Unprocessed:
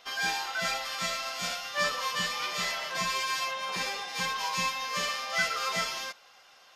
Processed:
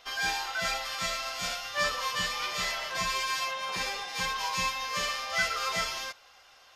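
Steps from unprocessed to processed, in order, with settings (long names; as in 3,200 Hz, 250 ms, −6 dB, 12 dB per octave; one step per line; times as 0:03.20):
low shelf with overshoot 120 Hz +9 dB, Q 1.5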